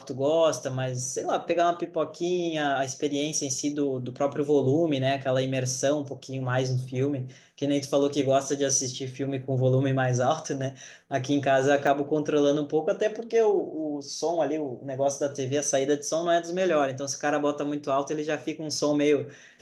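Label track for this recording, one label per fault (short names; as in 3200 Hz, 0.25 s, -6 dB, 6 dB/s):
11.870000	11.870000	gap 2.6 ms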